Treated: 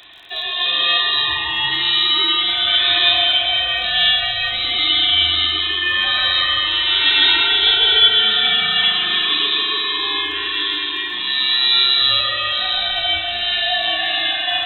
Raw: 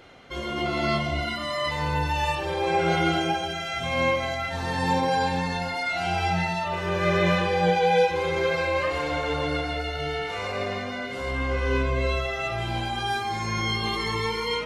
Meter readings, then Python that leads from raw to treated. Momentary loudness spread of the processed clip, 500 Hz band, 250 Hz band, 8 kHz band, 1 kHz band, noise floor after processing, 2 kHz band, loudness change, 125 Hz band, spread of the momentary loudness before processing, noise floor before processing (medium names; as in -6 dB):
7 LU, -7.0 dB, -7.5 dB, under -15 dB, -0.5 dB, -24 dBFS, +9.0 dB, +11.0 dB, under -10 dB, 7 LU, -32 dBFS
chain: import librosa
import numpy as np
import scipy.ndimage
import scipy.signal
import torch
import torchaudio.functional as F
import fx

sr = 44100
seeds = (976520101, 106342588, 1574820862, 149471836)

y = fx.freq_invert(x, sr, carrier_hz=3900)
y = fx.rev_spring(y, sr, rt60_s=4.0, pass_ms=(37,), chirp_ms=30, drr_db=2.0)
y = fx.dmg_crackle(y, sr, seeds[0], per_s=34.0, level_db=-42.0)
y = y * 10.0 ** (6.5 / 20.0)